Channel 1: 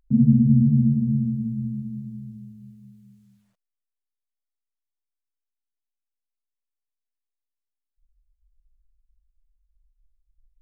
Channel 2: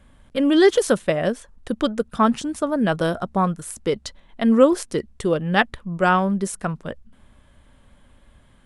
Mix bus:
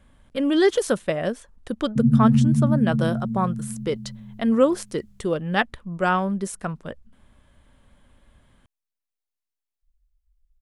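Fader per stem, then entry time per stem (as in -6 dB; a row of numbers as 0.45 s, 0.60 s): -1.0 dB, -3.5 dB; 1.85 s, 0.00 s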